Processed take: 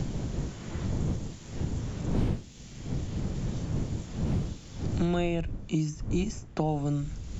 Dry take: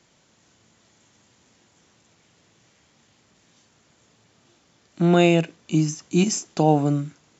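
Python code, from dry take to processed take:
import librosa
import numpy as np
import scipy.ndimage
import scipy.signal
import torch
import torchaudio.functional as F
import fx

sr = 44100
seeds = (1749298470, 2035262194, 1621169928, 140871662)

y = fx.dmg_wind(x, sr, seeds[0], corner_hz=95.0, level_db=-23.0)
y = fx.band_squash(y, sr, depth_pct=100)
y = F.gain(torch.from_numpy(y), -7.5).numpy()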